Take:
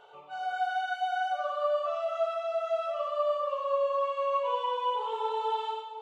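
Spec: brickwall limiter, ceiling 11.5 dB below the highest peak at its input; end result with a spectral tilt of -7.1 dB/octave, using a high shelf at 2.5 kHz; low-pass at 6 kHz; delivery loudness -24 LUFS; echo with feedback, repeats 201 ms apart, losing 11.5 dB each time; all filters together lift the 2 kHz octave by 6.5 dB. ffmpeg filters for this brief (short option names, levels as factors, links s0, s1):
-af "lowpass=6000,equalizer=f=2000:t=o:g=9,highshelf=f=2500:g=4.5,alimiter=level_in=1.41:limit=0.0631:level=0:latency=1,volume=0.708,aecho=1:1:201|402|603:0.266|0.0718|0.0194,volume=2.99"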